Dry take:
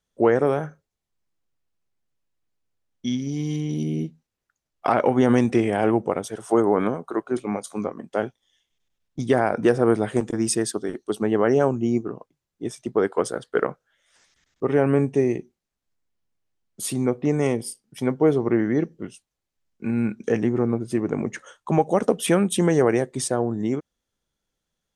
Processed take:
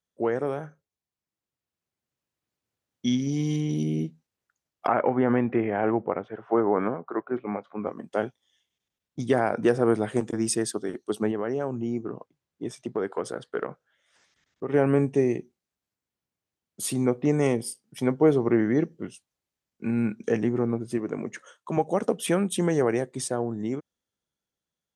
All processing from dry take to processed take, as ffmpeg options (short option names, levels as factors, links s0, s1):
-filter_complex "[0:a]asettb=1/sr,asplit=3[s0][s1][s2];[s0]atrim=end=4.874[s3];[s1]atrim=start=4.87:end=7.87,asetpts=PTS-STARTPTS,afade=t=in:d=0.004:c=qsin,afade=t=out:st=2.996:d=0.004:c=qsin,lowpass=f=2200:w=0.5412,lowpass=f=2200:w=1.3066,lowshelf=f=490:g=-4[s4];[s2]atrim=start=7.866[s5];[s3][s4]acrossfade=d=0.004:c1=hsin:c2=qsin[s6];[s6][s5]acrossfade=d=0.004:c1=qsin:c2=hsin,asettb=1/sr,asplit=3[s7][s8][s9];[s7]atrim=end=11.314[s10];[s8]atrim=start=11.31:end=14.74,asetpts=PTS-STARTPTS,afade=t=in:d=0.004:c=qsin,afade=t=out:st=3.426:d=0.004:c=qsin,highshelf=f=6500:g=-8.5,acompressor=threshold=0.0398:ratio=2:attack=3.2:release=140:knee=1:detection=peak[s11];[s9]atrim=start=14.736[s12];[s10][s11]acrossfade=d=0.004:c1=hsin:c2=qsin[s13];[s13][s12]acrossfade=d=0.004:c1=qsin:c2=hsin,asettb=1/sr,asplit=3[s14][s15][s16];[s14]atrim=end=20.984[s17];[s15]atrim=start=20.98:end=21.77,asetpts=PTS-STARTPTS,afade=t=in:d=0.004:c=qsin,afade=t=out:st=0.786:d=0.004:c=qsin,highpass=f=200:p=1,bandreject=f=820:w=7.8[s18];[s16]atrim=start=21.766[s19];[s17][s18]acrossfade=d=0.004:c1=hsin:c2=qsin[s20];[s20][s19]acrossfade=d=0.004:c1=qsin:c2=hsin,highpass=76,dynaudnorm=f=280:g=11:m=3.35,volume=0.398"